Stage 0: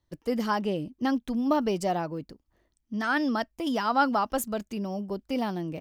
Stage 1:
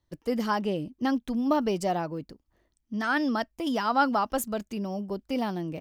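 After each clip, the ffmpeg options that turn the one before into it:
ffmpeg -i in.wav -af anull out.wav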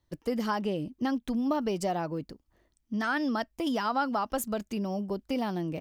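ffmpeg -i in.wav -af "acompressor=threshold=-29dB:ratio=2.5,volume=1.5dB" out.wav

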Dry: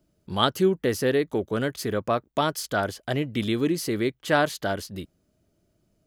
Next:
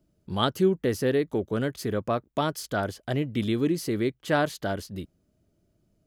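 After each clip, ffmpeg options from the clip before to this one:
ffmpeg -i in.wav -af "lowshelf=frequency=460:gain=5.5,volume=-4.5dB" out.wav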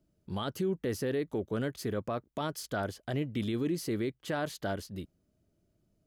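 ffmpeg -i in.wav -af "alimiter=limit=-19.5dB:level=0:latency=1:release=17,volume=-4.5dB" out.wav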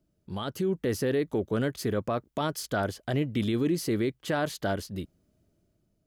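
ffmpeg -i in.wav -af "dynaudnorm=framelen=180:gausssize=7:maxgain=5dB" out.wav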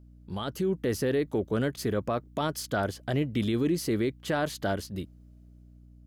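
ffmpeg -i in.wav -af "aeval=exprs='val(0)+0.00282*(sin(2*PI*60*n/s)+sin(2*PI*2*60*n/s)/2+sin(2*PI*3*60*n/s)/3+sin(2*PI*4*60*n/s)/4+sin(2*PI*5*60*n/s)/5)':channel_layout=same" out.wav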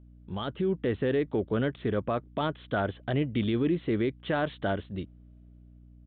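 ffmpeg -i in.wav -af "aresample=8000,aresample=44100" out.wav

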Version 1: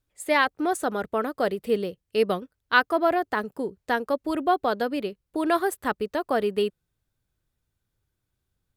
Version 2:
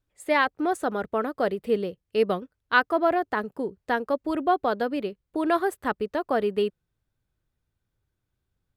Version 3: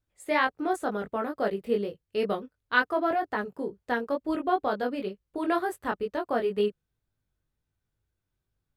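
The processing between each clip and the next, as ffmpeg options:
ffmpeg -i in.wav -af "highshelf=frequency=4300:gain=-8.5" out.wav
ffmpeg -i in.wav -af "flanger=delay=19:depth=2.7:speed=2.1" out.wav

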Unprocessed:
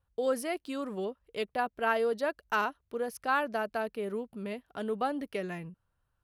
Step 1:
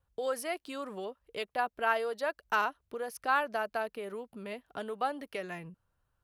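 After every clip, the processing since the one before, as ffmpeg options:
ffmpeg -i in.wav -filter_complex "[0:a]equalizer=frequency=490:width_type=o:width=2.2:gain=2,acrossover=split=590|2000[link_01][link_02][link_03];[link_01]acompressor=threshold=-43dB:ratio=6[link_04];[link_04][link_02][link_03]amix=inputs=3:normalize=0" out.wav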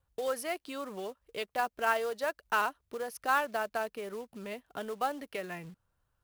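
ffmpeg -i in.wav -af "acrusher=bits=4:mode=log:mix=0:aa=0.000001" out.wav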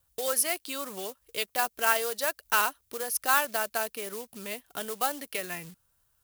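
ffmpeg -i in.wav -af "crystalizer=i=5:c=0" out.wav

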